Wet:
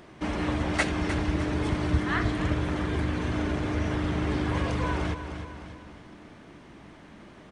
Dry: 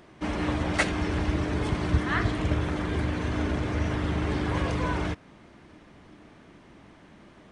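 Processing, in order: feedback delay 304 ms, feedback 43%, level -11 dB; in parallel at -1.5 dB: compression, threshold -36 dBFS, peak gain reduction 17.5 dB; on the sum: trim -2.5 dB

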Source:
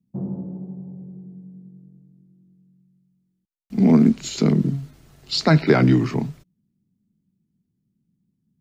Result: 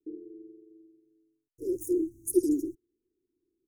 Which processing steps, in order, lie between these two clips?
Chebyshev band-stop 150–2700 Hz, order 5; treble shelf 2.1 kHz -5.5 dB; comb 5.7 ms, depth 68%; speed mistake 33 rpm record played at 78 rpm; trim -5 dB

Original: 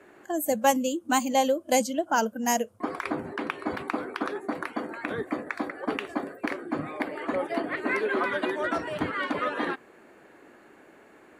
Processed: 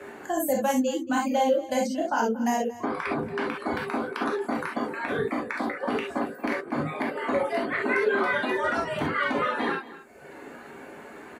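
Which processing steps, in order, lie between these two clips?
reverb removal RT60 1 s; 0.74–3.07 s: treble shelf 5.9 kHz -10.5 dB; peak limiter -19.5 dBFS, peak gain reduction 10 dB; delay 229 ms -19 dB; gated-style reverb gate 90 ms flat, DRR -3 dB; three bands compressed up and down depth 40%

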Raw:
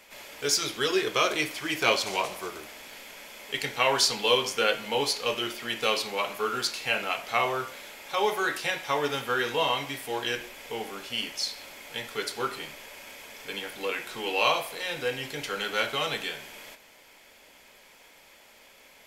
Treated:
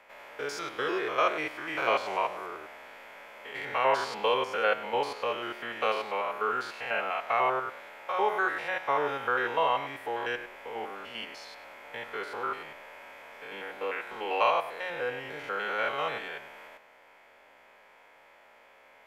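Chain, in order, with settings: spectrogram pixelated in time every 100 ms; three-band isolator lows -12 dB, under 490 Hz, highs -21 dB, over 2.1 kHz; trim +4.5 dB

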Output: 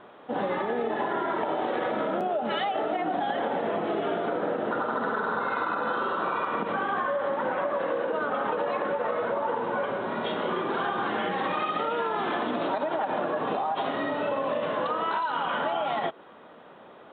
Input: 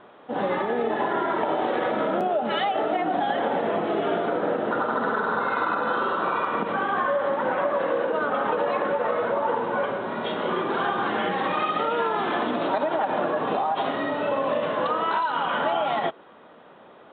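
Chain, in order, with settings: compression 2.5:1, threshold -26 dBFS, peak gain reduction 5 dB

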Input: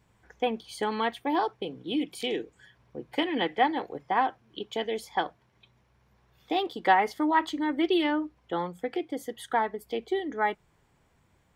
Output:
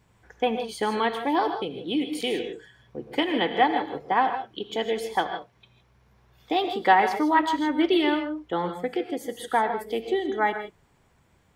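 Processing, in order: gated-style reverb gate 180 ms rising, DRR 7 dB; trim +3 dB

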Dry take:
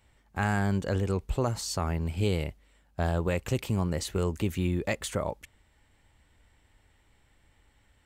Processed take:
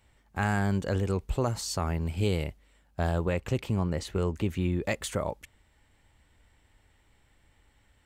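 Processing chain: 3.25–4.83 s: treble shelf 5.8 kHz -10.5 dB

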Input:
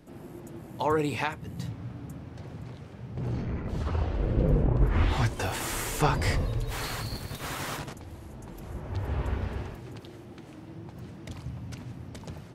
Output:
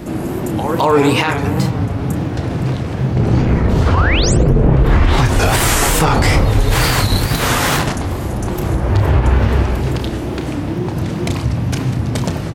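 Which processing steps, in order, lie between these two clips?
in parallel at +2.5 dB: compression, threshold -39 dBFS, peak gain reduction 20 dB; on the sum: pre-echo 217 ms -13 dB; painted sound rise, 3.94–4.34 s, 840–8200 Hz -33 dBFS; on a send: filtered feedback delay 107 ms, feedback 83%, low-pass 2.1 kHz, level -13 dB; on the sum: wow and flutter 130 cents; doubling 31 ms -9 dB; loudness maximiser +18 dB; endings held to a fixed fall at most 190 dB/s; trim -2.5 dB

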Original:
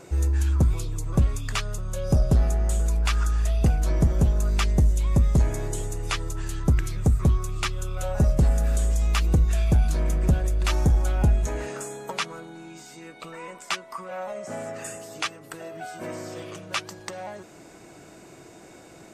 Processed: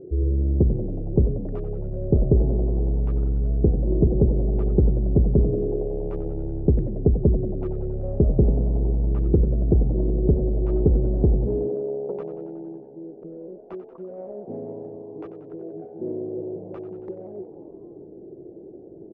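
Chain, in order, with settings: local Wiener filter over 41 samples; resonant low-pass 400 Hz, resonance Q 4.9; frequency-shifting echo 92 ms, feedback 61%, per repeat +69 Hz, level -13 dB

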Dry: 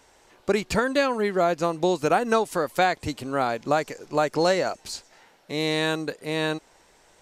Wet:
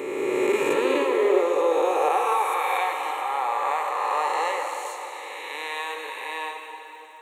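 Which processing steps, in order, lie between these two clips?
reverse spectral sustain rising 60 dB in 2.77 s; crackle 170 per s -44 dBFS; static phaser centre 1 kHz, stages 8; reverberation RT60 3.6 s, pre-delay 63 ms, DRR 3.5 dB; high-pass sweep 230 Hz -> 850 Hz, 0.48–2.52 s; trim -5 dB

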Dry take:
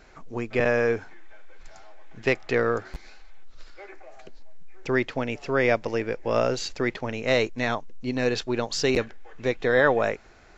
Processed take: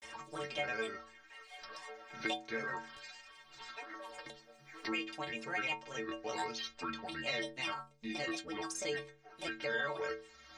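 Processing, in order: high-pass 40 Hz 6 dB/octave; tilt shelf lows -6.5 dB, about 830 Hz; granulator, spray 29 ms, pitch spread up and down by 7 st; inharmonic resonator 67 Hz, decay 0.65 s, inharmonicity 0.03; three bands compressed up and down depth 70%; trim -1 dB

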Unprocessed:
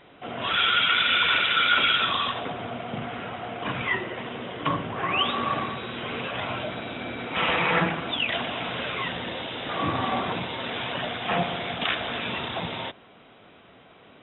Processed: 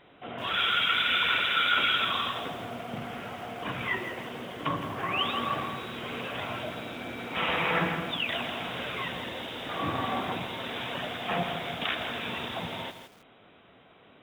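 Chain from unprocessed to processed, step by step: bit-crushed delay 164 ms, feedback 35%, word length 7-bit, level -8.5 dB; trim -4.5 dB

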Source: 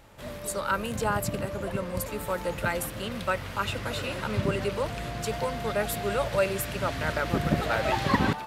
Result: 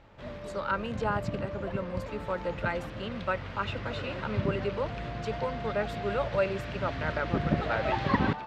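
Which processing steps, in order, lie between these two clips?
distance through air 190 m; trim -1.5 dB

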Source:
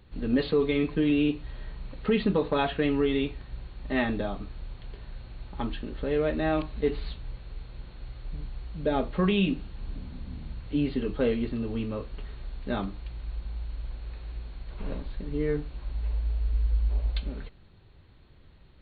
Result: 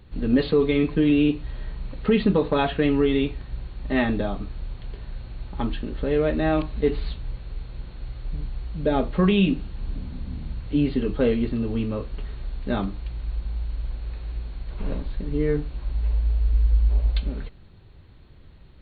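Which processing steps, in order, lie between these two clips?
bass shelf 360 Hz +3.5 dB; trim +3 dB

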